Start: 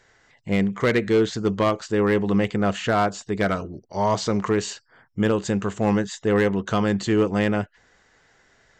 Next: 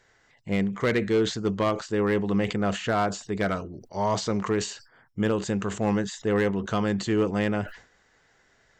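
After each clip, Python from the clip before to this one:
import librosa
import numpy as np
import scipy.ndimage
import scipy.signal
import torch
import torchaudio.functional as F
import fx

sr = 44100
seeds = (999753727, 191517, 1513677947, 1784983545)

y = fx.sustainer(x, sr, db_per_s=130.0)
y = y * 10.0 ** (-4.0 / 20.0)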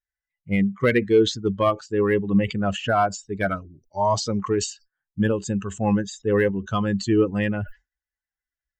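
y = fx.bin_expand(x, sr, power=2.0)
y = y * 10.0 ** (8.0 / 20.0)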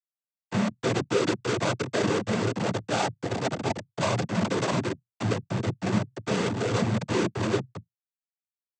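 y = fx.echo_stepped(x, sr, ms=329, hz=470.0, octaves=0.7, feedback_pct=70, wet_db=-1.5)
y = fx.schmitt(y, sr, flips_db=-20.0)
y = fx.noise_vocoder(y, sr, seeds[0], bands=16)
y = y * 10.0 ** (-1.5 / 20.0)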